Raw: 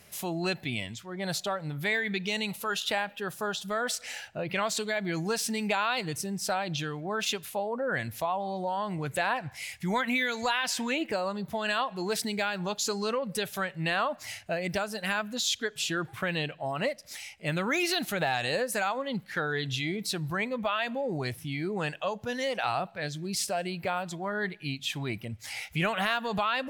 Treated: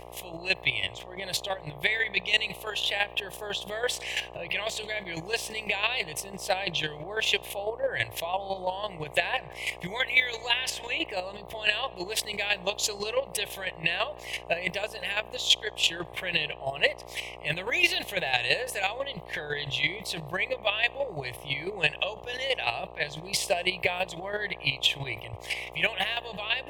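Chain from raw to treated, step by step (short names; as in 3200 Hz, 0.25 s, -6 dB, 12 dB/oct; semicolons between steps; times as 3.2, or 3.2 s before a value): band shelf 2100 Hz +12.5 dB; AGC gain up to 12.5 dB; chopper 6 Hz, depth 65%, duty 20%; buzz 60 Hz, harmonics 23, -40 dBFS 0 dB/oct; fixed phaser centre 570 Hz, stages 4; gain -1.5 dB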